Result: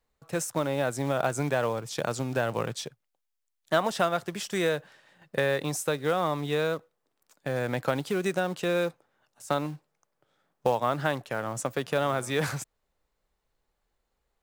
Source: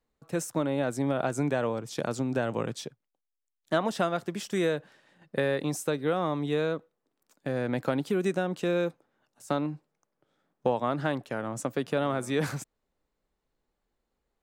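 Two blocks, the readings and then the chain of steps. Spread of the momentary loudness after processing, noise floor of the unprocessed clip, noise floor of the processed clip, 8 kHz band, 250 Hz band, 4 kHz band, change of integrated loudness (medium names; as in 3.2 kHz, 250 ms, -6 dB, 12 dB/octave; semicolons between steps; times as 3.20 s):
7 LU, -83 dBFS, -80 dBFS, +4.0 dB, -3.0 dB, +4.0 dB, +1.0 dB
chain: in parallel at -5 dB: short-mantissa float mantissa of 2-bit; on the sum: peaking EQ 260 Hz -8 dB 1.4 oct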